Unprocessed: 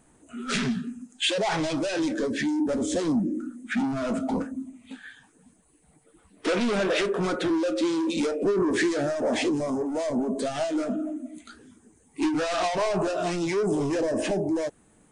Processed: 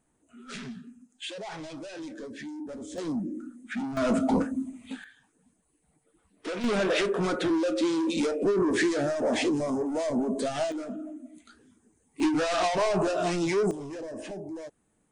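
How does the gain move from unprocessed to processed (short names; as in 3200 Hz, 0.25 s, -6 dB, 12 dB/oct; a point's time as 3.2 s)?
-13 dB
from 2.98 s -6.5 dB
from 3.97 s +3 dB
from 5.04 s -9 dB
from 6.64 s -1 dB
from 10.72 s -8 dB
from 12.2 s 0 dB
from 13.71 s -12 dB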